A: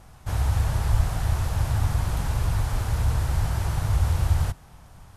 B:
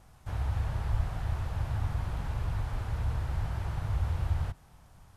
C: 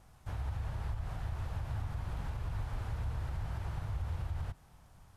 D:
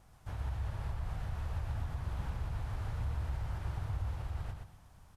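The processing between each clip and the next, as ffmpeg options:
-filter_complex "[0:a]acrossover=split=3900[s0][s1];[s1]acompressor=threshold=0.002:ratio=4:attack=1:release=60[s2];[s0][s2]amix=inputs=2:normalize=0,volume=0.398"
-af "alimiter=level_in=1.26:limit=0.0631:level=0:latency=1:release=116,volume=0.794,volume=0.708"
-af "aecho=1:1:122|244|366:0.562|0.146|0.038,volume=0.841"

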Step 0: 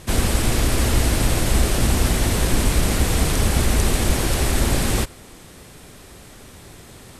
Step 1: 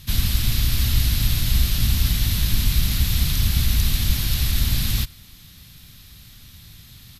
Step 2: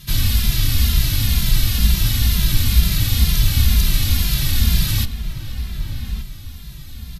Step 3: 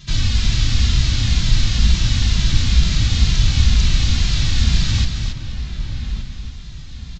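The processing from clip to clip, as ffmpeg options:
-af "firequalizer=gain_entry='entry(130,0);entry(400,-23);entry(1200,-11);entry(3800,4);entry(8700,-10);entry(13000,8)':delay=0.05:min_phase=1"
-filter_complex "[0:a]asplit=2[s0][s1];[s1]adelay=1176,lowpass=f=1700:p=1,volume=0.376,asplit=2[s2][s3];[s3]adelay=1176,lowpass=f=1700:p=1,volume=0.36,asplit=2[s4][s5];[s5]adelay=1176,lowpass=f=1700:p=1,volume=0.36,asplit=2[s6][s7];[s7]adelay=1176,lowpass=f=1700:p=1,volume=0.36[s8];[s0][s2][s4][s6][s8]amix=inputs=5:normalize=0,asplit=2[s9][s10];[s10]adelay=2.5,afreqshift=-2.1[s11];[s9][s11]amix=inputs=2:normalize=1,volume=2"
-filter_complex "[0:a]asplit=2[s0][s1];[s1]aecho=0:1:275:0.473[s2];[s0][s2]amix=inputs=2:normalize=0,aresample=16000,aresample=44100"

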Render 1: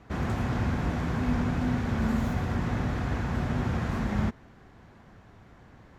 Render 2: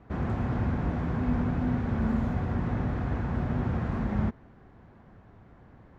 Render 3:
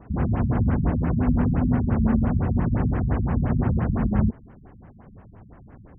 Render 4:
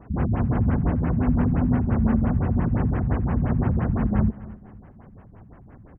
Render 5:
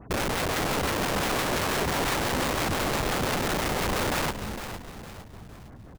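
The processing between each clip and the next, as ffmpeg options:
-af "lowpass=f=1200:p=1"
-af "afftfilt=real='re*lt(b*sr/1024,220*pow(3300/220,0.5+0.5*sin(2*PI*5.8*pts/sr)))':imag='im*lt(b*sr/1024,220*pow(3300/220,0.5+0.5*sin(2*PI*5.8*pts/sr)))':win_size=1024:overlap=0.75,volume=2.24"
-af "aecho=1:1:249|498|747:0.126|0.0453|0.0163"
-filter_complex "[0:a]aeval=exprs='(mod(13.3*val(0)+1,2)-1)/13.3':c=same,asplit=5[s0][s1][s2][s3][s4];[s1]adelay=458,afreqshift=-41,volume=0.316[s5];[s2]adelay=916,afreqshift=-82,volume=0.13[s6];[s3]adelay=1374,afreqshift=-123,volume=0.0531[s7];[s4]adelay=1832,afreqshift=-164,volume=0.0219[s8];[s0][s5][s6][s7][s8]amix=inputs=5:normalize=0"

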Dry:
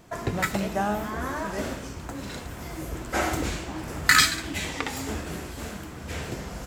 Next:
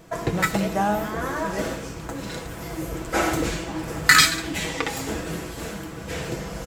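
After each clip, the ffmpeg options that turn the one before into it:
-af "equalizer=f=470:w=3.5:g=4,aecho=1:1:6.1:0.45,volume=1.33"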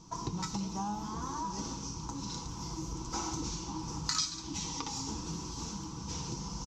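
-af "firequalizer=gain_entry='entry(260,0);entry(620,-21);entry(910,6);entry(1700,-20);entry(2600,-9);entry(5900,12);entry(8900,-17);entry(14000,-24)':delay=0.05:min_phase=1,acompressor=threshold=0.0251:ratio=2.5,volume=0.631"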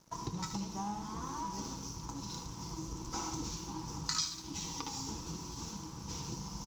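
-filter_complex "[0:a]aeval=exprs='sgn(val(0))*max(abs(val(0))-0.002,0)':c=same,asplit=2[s0][s1];[s1]aecho=0:1:75:0.299[s2];[s0][s2]amix=inputs=2:normalize=0,volume=0.794"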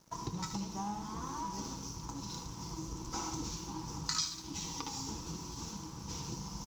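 -af "acrusher=bits=11:mix=0:aa=0.000001"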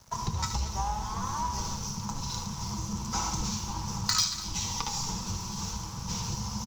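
-filter_complex "[0:a]acrossover=split=430|6600[s0][s1][s2];[s0]afreqshift=-260[s3];[s2]aeval=exprs='(mod(53.1*val(0)+1,2)-1)/53.1':c=same[s4];[s3][s1][s4]amix=inputs=3:normalize=0,aecho=1:1:234:0.168,volume=2.66"

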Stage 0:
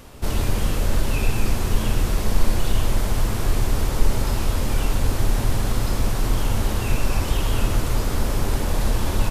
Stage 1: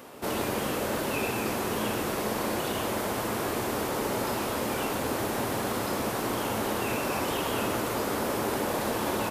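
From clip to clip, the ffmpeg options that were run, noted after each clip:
-af "highpass=280,equalizer=f=5700:w=0.45:g=-7,volume=1.33"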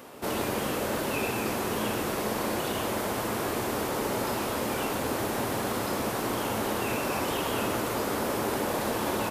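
-af anull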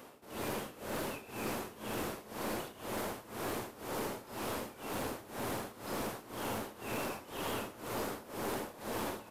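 -af "tremolo=f=2:d=0.89,aeval=exprs='(tanh(17.8*val(0)+0.35)-tanh(0.35))/17.8':c=same,volume=0.596"

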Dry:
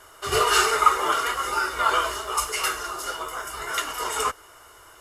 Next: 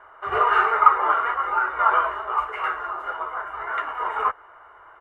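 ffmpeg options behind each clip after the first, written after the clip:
-af "firequalizer=gain_entry='entry(240,0);entry(810,14);entry(1800,9);entry(5000,-29)':delay=0.05:min_phase=1,volume=0.376"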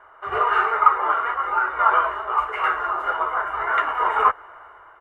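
-af "dynaudnorm=f=220:g=5:m=2.37,volume=0.891"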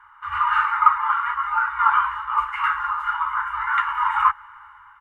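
-af "afftfilt=real='re*(1-between(b*sr/4096,110,820))':imag='im*(1-between(b*sr/4096,110,820))':win_size=4096:overlap=0.75"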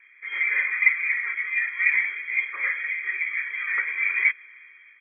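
-af "equalizer=f=100:t=o:w=0.67:g=8,equalizer=f=630:t=o:w=0.67:g=11,equalizer=f=2500:t=o:w=0.67:g=-5,lowpass=f=2800:t=q:w=0.5098,lowpass=f=2800:t=q:w=0.6013,lowpass=f=2800:t=q:w=0.9,lowpass=f=2800:t=q:w=2.563,afreqshift=-3300,volume=0.562"

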